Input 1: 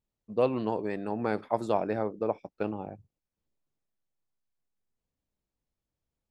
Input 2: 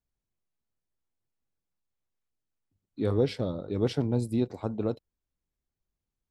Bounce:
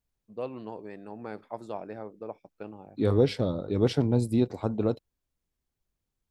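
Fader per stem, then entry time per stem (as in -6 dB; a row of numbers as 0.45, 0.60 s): -9.5, +3.0 dB; 0.00, 0.00 s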